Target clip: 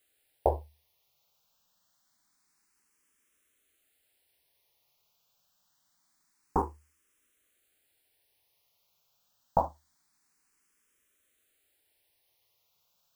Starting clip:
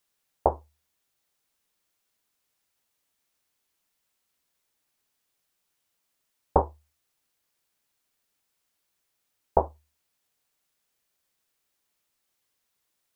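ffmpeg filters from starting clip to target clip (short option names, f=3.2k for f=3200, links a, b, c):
-filter_complex "[0:a]acrusher=bits=9:mode=log:mix=0:aa=0.000001,alimiter=limit=-15dB:level=0:latency=1:release=78,asplit=2[a][b];[b]afreqshift=0.26[c];[a][c]amix=inputs=2:normalize=1,volume=7dB"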